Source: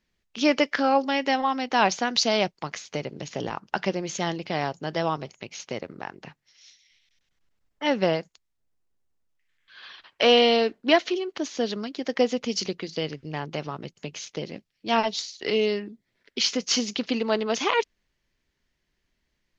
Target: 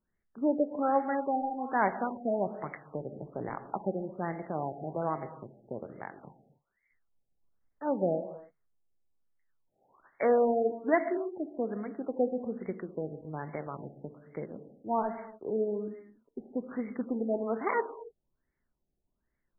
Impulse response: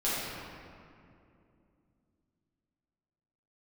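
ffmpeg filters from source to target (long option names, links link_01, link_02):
-filter_complex "[0:a]asplit=2[link_01][link_02];[1:a]atrim=start_sample=2205,afade=type=out:start_time=0.35:duration=0.01,atrim=end_sample=15876[link_03];[link_02][link_03]afir=irnorm=-1:irlink=0,volume=-17.5dB[link_04];[link_01][link_04]amix=inputs=2:normalize=0,afftfilt=real='re*lt(b*sr/1024,820*pow(2300/820,0.5+0.5*sin(2*PI*1.2*pts/sr)))':imag='im*lt(b*sr/1024,820*pow(2300/820,0.5+0.5*sin(2*PI*1.2*pts/sr)))':win_size=1024:overlap=0.75,volume=-7dB"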